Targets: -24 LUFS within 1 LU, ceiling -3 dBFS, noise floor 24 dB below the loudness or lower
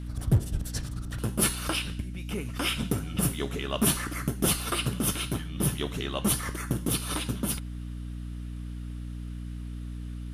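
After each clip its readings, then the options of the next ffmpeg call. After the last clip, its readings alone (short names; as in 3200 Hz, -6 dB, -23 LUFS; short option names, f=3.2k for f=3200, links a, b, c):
hum 60 Hz; harmonics up to 300 Hz; hum level -34 dBFS; loudness -30.0 LUFS; peak -13.5 dBFS; loudness target -24.0 LUFS
-> -af "bandreject=f=60:t=h:w=4,bandreject=f=120:t=h:w=4,bandreject=f=180:t=h:w=4,bandreject=f=240:t=h:w=4,bandreject=f=300:t=h:w=4"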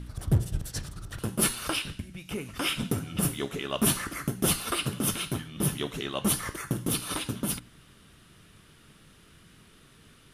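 hum none; loudness -29.5 LUFS; peak -14.0 dBFS; loudness target -24.0 LUFS
-> -af "volume=5.5dB"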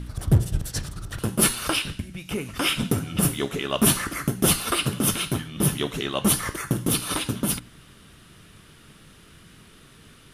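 loudness -24.0 LUFS; peak -8.5 dBFS; noise floor -51 dBFS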